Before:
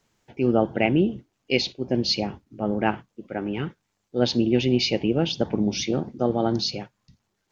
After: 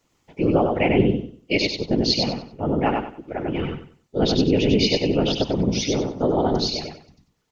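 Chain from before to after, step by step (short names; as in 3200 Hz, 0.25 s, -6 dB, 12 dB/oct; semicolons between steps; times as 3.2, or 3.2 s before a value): whisperiser; notch 1600 Hz, Q 10; feedback echo 95 ms, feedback 27%, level -3.5 dB; gain +1 dB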